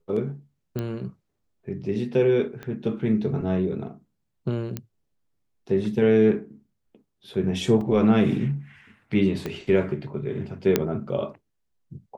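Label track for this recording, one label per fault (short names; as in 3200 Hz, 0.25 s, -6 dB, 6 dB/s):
0.790000	0.790000	pop -17 dBFS
2.630000	2.630000	pop -23 dBFS
4.770000	4.770000	pop -16 dBFS
7.810000	7.810000	gap 2.9 ms
9.460000	9.460000	pop -16 dBFS
10.760000	10.760000	pop -6 dBFS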